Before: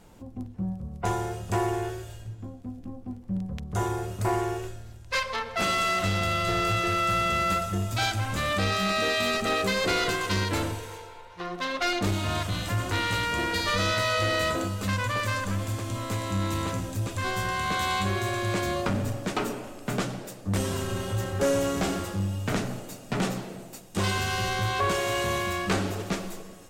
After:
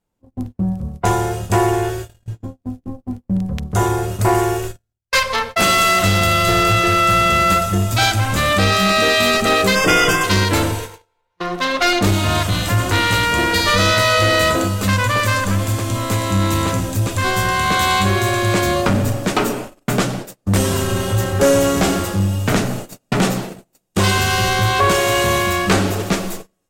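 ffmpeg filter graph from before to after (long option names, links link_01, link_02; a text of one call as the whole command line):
ffmpeg -i in.wav -filter_complex "[0:a]asettb=1/sr,asplit=3[link_01][link_02][link_03];[link_01]atrim=end=4.344[link_04];[link_02]atrim=start=4.34:end=6.63,asetpts=PTS-STARTPTS,afade=type=in:duration=0.004:curve=qsin,afade=type=out:start_time=2.286:duration=0.004:curve=qsin,agate=range=-33dB:threshold=-35dB:ratio=3:release=100:detection=peak,highshelf=frequency=8300:gain=6[link_05];[link_03]atrim=start=6.626[link_06];[link_04][link_05]acrossfade=duration=0.004:curve1=hsin:curve2=qsin[link_07];[link_07][link_06]acrossfade=duration=0.004:curve1=qsin:curve2=hsin,asettb=1/sr,asplit=3[link_08][link_09][link_10];[link_08]atrim=end=9.754[link_11];[link_09]atrim=start=9.75:end=10.24,asetpts=PTS-STARTPTS,afade=type=in:duration=0.004:curve=qsin,afade=type=out:start_time=0.486:duration=0.004:curve=qsin,asuperstop=centerf=4100:order=20:qfactor=3.9,aecho=1:1:6.5:0.64,atrim=end_sample=21609[link_12];[link_10]atrim=start=10.236[link_13];[link_11][link_12]acrossfade=duration=0.004:curve1=hsin:curve2=qsin[link_14];[link_14][link_13]acrossfade=duration=0.004:curve1=qsin:curve2=hsin,agate=range=-35dB:threshold=-37dB:ratio=16:detection=peak,highshelf=frequency=11000:gain=6,acontrast=84,volume=4dB" out.wav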